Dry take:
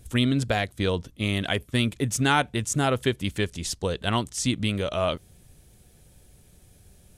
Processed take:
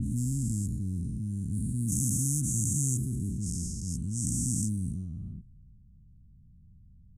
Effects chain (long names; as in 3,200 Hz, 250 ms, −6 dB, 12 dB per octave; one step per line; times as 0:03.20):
every bin's largest magnitude spread in time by 480 ms
dynamic equaliser 6,000 Hz, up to +4 dB, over −34 dBFS, Q 2.4
inverse Chebyshev band-stop filter 500–3,600 Hz, stop band 50 dB
low-pass that shuts in the quiet parts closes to 710 Hz, open at −19.5 dBFS
level −6.5 dB